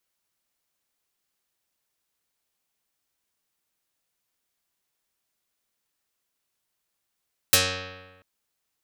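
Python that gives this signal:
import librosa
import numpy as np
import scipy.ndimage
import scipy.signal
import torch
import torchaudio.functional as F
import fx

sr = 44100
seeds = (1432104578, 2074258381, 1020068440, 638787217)

y = fx.pluck(sr, length_s=0.69, note=42, decay_s=1.26, pick=0.27, brightness='dark')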